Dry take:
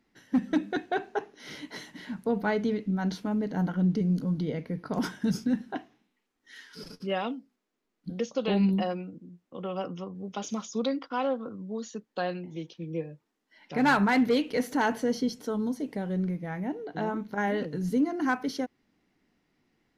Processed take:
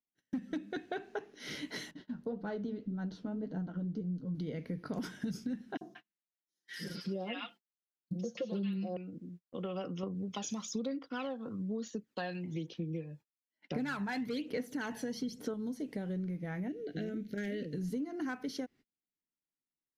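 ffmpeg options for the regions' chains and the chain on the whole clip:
ffmpeg -i in.wav -filter_complex "[0:a]asettb=1/sr,asplit=3[link_01][link_02][link_03];[link_01]atrim=end=1.914[link_04];[link_02]atrim=start=1.91:end=4.35,asetpts=PTS-STARTPTS,afade=type=in:duration=0.004:curve=qsin,afade=type=out:start_time=2.436:duration=0.004:curve=qsin,equalizer=frequency=2200:width=2.4:gain=-12.5,adynamicsmooth=sensitivity=1.5:basefreq=4000,flanger=delay=5.8:depth=7.1:regen=44:speed=1.8:shape=sinusoidal[link_05];[link_03]atrim=start=4.346[link_06];[link_04][link_05]acrossfade=duration=0.004:curve1=hsin:curve2=qsin[link_07];[link_07][link_06]acrossfade=duration=0.004:curve1=qsin:curve2=hsin,asettb=1/sr,asplit=3[link_08][link_09][link_10];[link_08]atrim=end=5.774[link_11];[link_09]atrim=start=5.77:end=8.97,asetpts=PTS-STARTPTS,afade=type=in:duration=0.004:curve=qsin,afade=type=out:start_time=3.196:duration=0.004:curve=qsin,highpass=100,aecho=1:1:5.7:0.96,atrim=end_sample=141120,acrossover=split=960|4900[link_12][link_13][link_14];[link_12]adelay=40[link_15];[link_13]adelay=180[link_16];[link_15][link_16][link_14]amix=inputs=3:normalize=0,atrim=end_sample=141120[link_17];[link_10]atrim=start=8.966[link_18];[link_11][link_17]acrossfade=duration=0.004:curve1=hsin:curve2=qsin[link_19];[link_19][link_18]acrossfade=duration=0.004:curve1=qsin:curve2=hsin,asettb=1/sr,asplit=3[link_20][link_21][link_22];[link_20]atrim=end=10.034[link_23];[link_21]atrim=start=10.03:end=15.54,asetpts=PTS-STARTPTS,afade=type=in:duration=0.004:curve=qsin,afade=type=out:start_time=5.506:duration=0.004:curve=qsin,highpass=54,aphaser=in_gain=1:out_gain=1:delay=1.2:decay=0.53:speed=1.1:type=sinusoidal[link_24];[link_22]atrim=start=15.536[link_25];[link_23][link_24]acrossfade=duration=0.004:curve1=hsin:curve2=qsin[link_26];[link_26][link_25]acrossfade=duration=0.004:curve1=qsin:curve2=hsin,asettb=1/sr,asplit=3[link_27][link_28][link_29];[link_27]atrim=end=16.684[link_30];[link_28]atrim=start=16.68:end=17.78,asetpts=PTS-STARTPTS,afade=type=in:duration=0.004:curve=qsin,afade=type=out:start_time=1.096:duration=0.004:curve=qsin,asoftclip=type=hard:threshold=-21.5dB,asuperstop=centerf=990:order=4:qfactor=0.79[link_31];[link_29]atrim=start=17.776[link_32];[link_30][link_31]acrossfade=duration=0.004:curve1=hsin:curve2=qsin[link_33];[link_33][link_32]acrossfade=duration=0.004:curve1=qsin:curve2=hsin,agate=range=-33dB:threshold=-50dB:ratio=16:detection=peak,equalizer=frequency=920:width_type=o:width=0.89:gain=-7,acompressor=threshold=-36dB:ratio=6,volume=1dB" out.wav

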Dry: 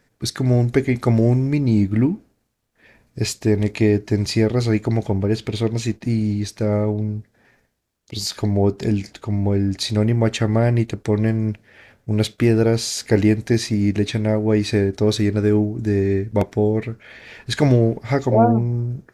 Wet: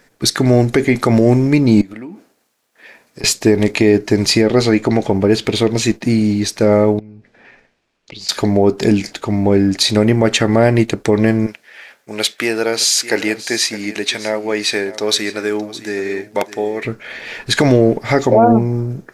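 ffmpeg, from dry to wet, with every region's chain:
ffmpeg -i in.wav -filter_complex "[0:a]asettb=1/sr,asplit=3[link_01][link_02][link_03];[link_01]atrim=end=1.814[link_04];[link_02]atrim=start=1.81:end=3.24,asetpts=PTS-STARTPTS,afade=type=in:duration=0.004:curve=qsin,afade=type=out:start_time=1.426:duration=0.004:curve=qsin,highpass=frequency=430:poles=1,acompressor=threshold=-35dB:ratio=16:attack=3.2:release=140:knee=1:detection=peak[link_05];[link_03]atrim=start=3.236[link_06];[link_04][link_05]acrossfade=duration=0.004:curve1=hsin:curve2=qsin[link_07];[link_07][link_06]acrossfade=duration=0.004:curve1=qsin:curve2=hsin,asettb=1/sr,asplit=3[link_08][link_09][link_10];[link_08]atrim=end=4.414[link_11];[link_09]atrim=start=4.41:end=5.1,asetpts=PTS-STARTPTS,afade=type=in:duration=0.004:curve=qsin,afade=type=out:start_time=0.686:duration=0.004:curve=qsin,highshelf=frequency=9100:gain=-8,asplit=2[link_12][link_13];[link_13]adelay=13,volume=-13dB[link_14];[link_12][link_14]amix=inputs=2:normalize=0,atrim=end_sample=30429[link_15];[link_10]atrim=start=5.096[link_16];[link_11][link_15]acrossfade=duration=0.004:curve1=hsin:curve2=qsin[link_17];[link_17][link_16]acrossfade=duration=0.004:curve1=qsin:curve2=hsin,asettb=1/sr,asplit=3[link_18][link_19][link_20];[link_18]atrim=end=6.994[link_21];[link_19]atrim=start=6.99:end=8.29,asetpts=PTS-STARTPTS,afade=type=in:duration=0.004:curve=qsin,afade=type=out:start_time=1.296:duration=0.004:curve=qsin,lowpass=4500,equalizer=frequency=2500:width_type=o:width=0.43:gain=5.5,acompressor=threshold=-39dB:ratio=6:attack=3.2:release=140:knee=1:detection=peak[link_22];[link_20]atrim=start=8.286[link_23];[link_21][link_22]acrossfade=duration=0.004:curve1=hsin:curve2=qsin[link_24];[link_24][link_23]acrossfade=duration=0.004:curve1=qsin:curve2=hsin,asettb=1/sr,asplit=3[link_25][link_26][link_27];[link_25]atrim=end=11.464[link_28];[link_26]atrim=start=11.46:end=16.85,asetpts=PTS-STARTPTS,afade=type=in:duration=0.004:curve=qsin,afade=type=out:start_time=5.386:duration=0.004:curve=qsin,highpass=frequency=1300:poles=1,aecho=1:1:613:0.168,atrim=end_sample=237699[link_29];[link_27]atrim=start=16.846[link_30];[link_28][link_29]acrossfade=duration=0.004:curve1=hsin:curve2=qsin[link_31];[link_31][link_30]acrossfade=duration=0.004:curve1=qsin:curve2=hsin,equalizer=frequency=73:width=0.64:gain=-14.5,alimiter=level_in=12.5dB:limit=-1dB:release=50:level=0:latency=1,volume=-1dB" out.wav

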